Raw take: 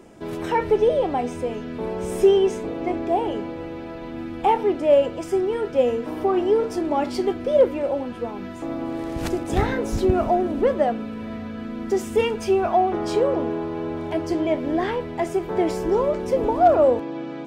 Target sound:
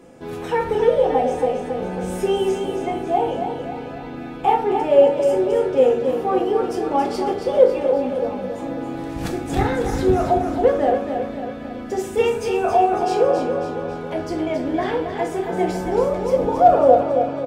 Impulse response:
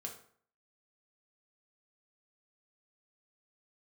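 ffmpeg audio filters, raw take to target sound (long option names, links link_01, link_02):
-filter_complex "[0:a]aecho=1:1:274|548|822|1096|1370|1644:0.447|0.228|0.116|0.0593|0.0302|0.0154[link_01];[1:a]atrim=start_sample=2205,asetrate=48510,aresample=44100[link_02];[link_01][link_02]afir=irnorm=-1:irlink=0,volume=4.5dB"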